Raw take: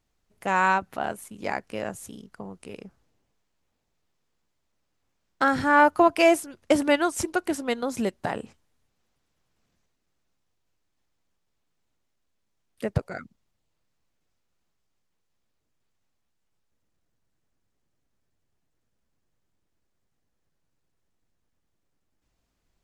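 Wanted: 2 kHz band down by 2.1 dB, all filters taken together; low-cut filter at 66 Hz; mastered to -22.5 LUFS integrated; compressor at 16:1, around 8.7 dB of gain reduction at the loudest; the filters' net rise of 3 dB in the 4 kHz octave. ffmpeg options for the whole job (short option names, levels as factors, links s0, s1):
-af "highpass=66,equalizer=f=2000:t=o:g=-4.5,equalizer=f=4000:t=o:g=6.5,acompressor=threshold=0.0891:ratio=16,volume=2.37"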